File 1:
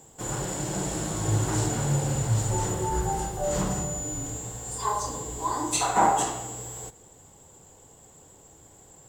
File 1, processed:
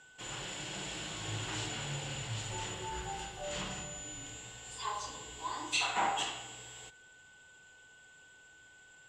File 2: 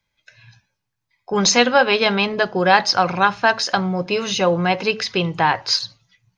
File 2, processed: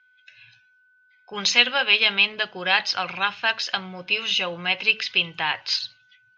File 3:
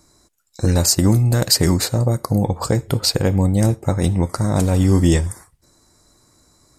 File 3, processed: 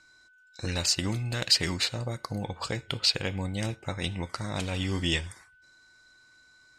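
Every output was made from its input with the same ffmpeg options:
-af "aeval=exprs='val(0)+0.00282*sin(2*PI*1500*n/s)':c=same,crystalizer=i=10:c=0,lowpass=f=2.9k:t=q:w=2.8,volume=-16.5dB"

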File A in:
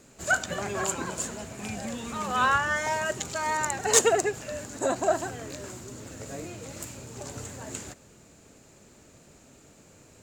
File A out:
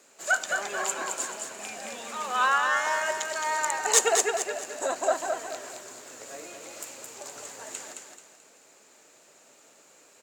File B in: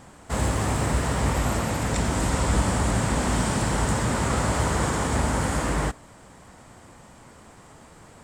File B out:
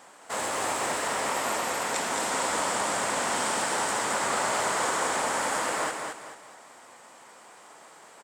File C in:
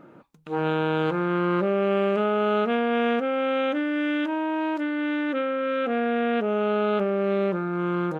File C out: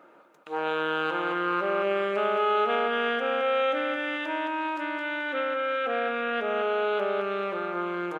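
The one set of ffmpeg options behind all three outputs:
-filter_complex "[0:a]highpass=530,asplit=2[a][b];[b]aecho=0:1:217|434|651|868:0.562|0.202|0.0729|0.0262[c];[a][c]amix=inputs=2:normalize=0"

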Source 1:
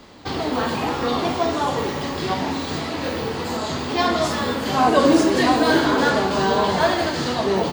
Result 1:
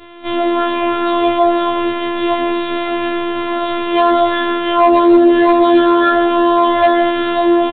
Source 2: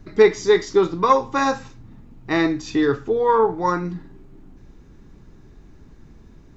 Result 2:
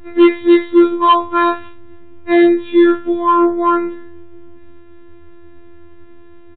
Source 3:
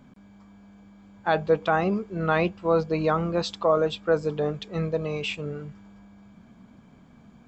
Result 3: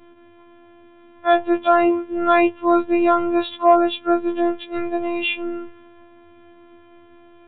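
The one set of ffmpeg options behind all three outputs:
-af "afftfilt=real='hypot(re,im)*cos(PI*b)':imag='0':win_size=512:overlap=0.75,bandreject=f=317.1:t=h:w=4,bandreject=f=634.2:t=h:w=4,bandreject=f=951.3:t=h:w=4,bandreject=f=1.2684k:t=h:w=4,bandreject=f=1.5855k:t=h:w=4,bandreject=f=1.9026k:t=h:w=4,bandreject=f=2.2197k:t=h:w=4,bandreject=f=2.5368k:t=h:w=4,bandreject=f=2.8539k:t=h:w=4,bandreject=f=3.171k:t=h:w=4,bandreject=f=3.4881k:t=h:w=4,aresample=8000,aeval=exprs='0.562*sin(PI/2*2*val(0)/0.562)':c=same,aresample=44100,afftfilt=real='re*2*eq(mod(b,4),0)':imag='im*2*eq(mod(b,4),0)':win_size=2048:overlap=0.75,volume=-1.5dB"

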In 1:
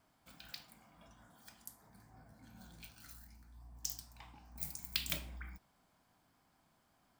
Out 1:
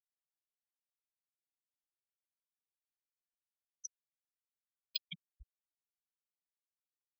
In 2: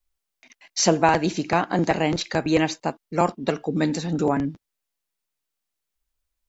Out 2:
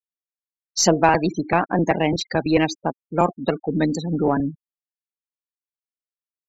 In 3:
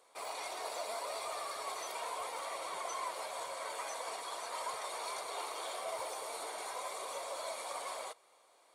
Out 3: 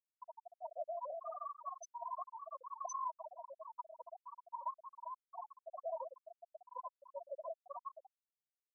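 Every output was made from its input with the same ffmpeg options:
-af "highshelf=f=8k:g=2.5,afftfilt=real='re*gte(hypot(re,im),0.0562)':imag='im*gte(hypot(re,im),0.0562)':win_size=1024:overlap=0.75,aeval=exprs='0.631*(cos(1*acos(clip(val(0)/0.631,-1,1)))-cos(1*PI/2))+0.01*(cos(6*acos(clip(val(0)/0.631,-1,1)))-cos(6*PI/2))':c=same,volume=2dB"

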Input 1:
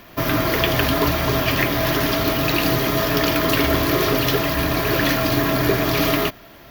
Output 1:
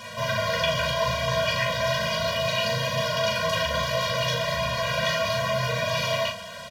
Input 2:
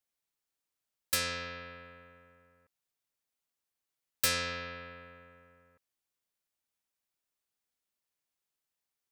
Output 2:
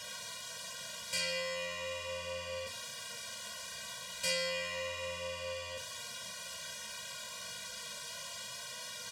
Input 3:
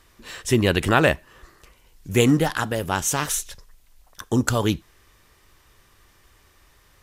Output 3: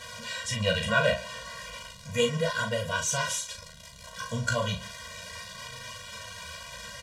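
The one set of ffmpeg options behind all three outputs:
-filter_complex "[0:a]aeval=exprs='val(0)+0.5*0.0355*sgn(val(0))':c=same,equalizer=f=190:w=0.34:g=-7.5,bandreject=f=2.1k:w=8.4,flanger=delay=8.1:depth=8.9:regen=-20:speed=0.34:shape=sinusoidal,asplit=2[a][b];[b]volume=26dB,asoftclip=hard,volume=-26dB,volume=-6.5dB[c];[a][c]amix=inputs=2:normalize=0,acrusher=bits=7:mix=0:aa=0.000001,highpass=110,lowpass=6.7k,asplit=2[d][e];[e]adelay=38,volume=-5.5dB[f];[d][f]amix=inputs=2:normalize=0,asplit=2[g][h];[h]aecho=0:1:140:0.0944[i];[g][i]amix=inputs=2:normalize=0,afftfilt=real='re*eq(mod(floor(b*sr/1024/230),2),0)':imag='im*eq(mod(floor(b*sr/1024/230),2),0)':win_size=1024:overlap=0.75"

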